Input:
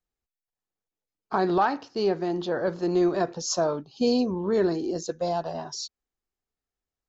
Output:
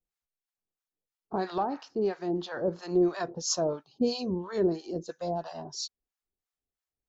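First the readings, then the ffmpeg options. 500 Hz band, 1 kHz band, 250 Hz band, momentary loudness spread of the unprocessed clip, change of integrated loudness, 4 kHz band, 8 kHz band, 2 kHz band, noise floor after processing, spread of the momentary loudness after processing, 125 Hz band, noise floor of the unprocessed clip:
−4.5 dB, −7.0 dB, −4.5 dB, 8 LU, −4.5 dB, −2.5 dB, can't be measured, −7.5 dB, below −85 dBFS, 9 LU, −3.5 dB, below −85 dBFS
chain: -filter_complex "[0:a]acrossover=split=760[link_01][link_02];[link_01]aeval=exprs='val(0)*(1-1/2+1/2*cos(2*PI*3*n/s))':channel_layout=same[link_03];[link_02]aeval=exprs='val(0)*(1-1/2-1/2*cos(2*PI*3*n/s))':channel_layout=same[link_04];[link_03][link_04]amix=inputs=2:normalize=0"

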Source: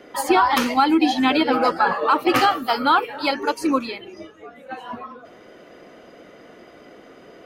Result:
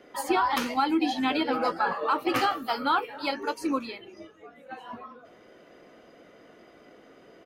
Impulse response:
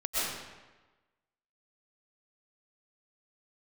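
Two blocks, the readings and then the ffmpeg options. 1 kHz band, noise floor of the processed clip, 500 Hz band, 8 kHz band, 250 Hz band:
−8.0 dB, −55 dBFS, −8.0 dB, −8.0 dB, −8.0 dB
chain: -filter_complex "[0:a]asplit=2[link_01][link_02];[link_02]adelay=18,volume=-13dB[link_03];[link_01][link_03]amix=inputs=2:normalize=0,volume=-8dB"

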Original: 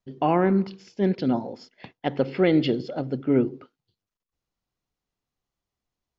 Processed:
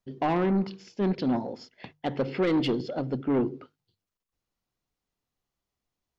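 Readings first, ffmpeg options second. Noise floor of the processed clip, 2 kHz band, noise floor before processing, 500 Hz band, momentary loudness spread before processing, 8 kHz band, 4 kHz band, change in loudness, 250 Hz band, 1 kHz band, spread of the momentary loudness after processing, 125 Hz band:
below −85 dBFS, −3.5 dB, below −85 dBFS, −4.5 dB, 11 LU, can't be measured, −2.0 dB, −4.0 dB, −3.5 dB, −3.5 dB, 12 LU, −4.0 dB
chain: -af "asoftclip=type=tanh:threshold=-19.5dB,bandreject=frequency=50:width_type=h:width=6,bandreject=frequency=100:width_type=h:width=6,bandreject=frequency=150:width_type=h:width=6"

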